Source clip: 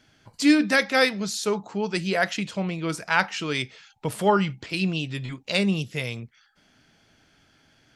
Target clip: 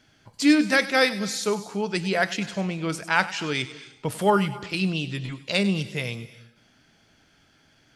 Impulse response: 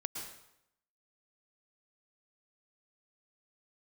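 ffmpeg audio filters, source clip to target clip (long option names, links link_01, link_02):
-filter_complex "[0:a]asplit=2[link_01][link_02];[1:a]atrim=start_sample=2205,highshelf=frequency=4100:gain=10,adelay=98[link_03];[link_02][link_03]afir=irnorm=-1:irlink=0,volume=-16.5dB[link_04];[link_01][link_04]amix=inputs=2:normalize=0"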